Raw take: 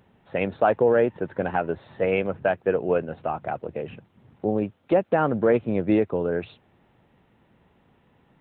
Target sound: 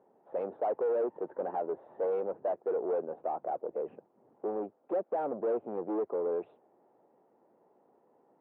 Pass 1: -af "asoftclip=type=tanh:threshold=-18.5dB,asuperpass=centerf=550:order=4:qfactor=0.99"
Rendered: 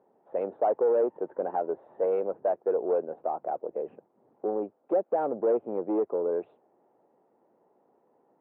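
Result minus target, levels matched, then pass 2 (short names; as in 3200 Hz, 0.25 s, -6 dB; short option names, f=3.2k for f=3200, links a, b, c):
soft clip: distortion -6 dB
-af "asoftclip=type=tanh:threshold=-26.5dB,asuperpass=centerf=550:order=4:qfactor=0.99"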